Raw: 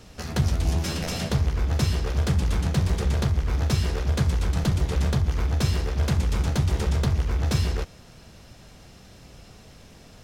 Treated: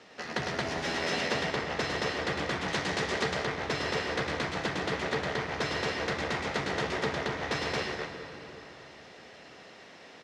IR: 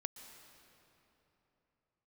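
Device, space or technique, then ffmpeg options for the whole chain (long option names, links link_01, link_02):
station announcement: -filter_complex "[0:a]highpass=350,lowpass=4200,equalizer=frequency=1900:width_type=o:width=0.27:gain=7.5,aecho=1:1:105|224.5:0.562|0.891[link_01];[1:a]atrim=start_sample=2205[link_02];[link_01][link_02]afir=irnorm=-1:irlink=0,asettb=1/sr,asplit=3[link_03][link_04][link_05];[link_03]atrim=end=2.684[link_06];[link_04]atrim=start=2.68:end=3.45,asetpts=PTS-STARTPTS,afade=type=in:duration=0.004:curve=qsin,afade=type=out:start_time=0.766:duration=0.004:curve=qsin,equalizer=frequency=7000:width_type=o:width=2:gain=5.5[link_07];[link_05]atrim=start=3.446[link_08];[link_06][link_07]acrossfade=duration=0.004:curve1=hsin:curve2=qsin[link_09];[link_09][link_08]acrossfade=duration=0.004:curve1=qsin:curve2=hsin,volume=2dB"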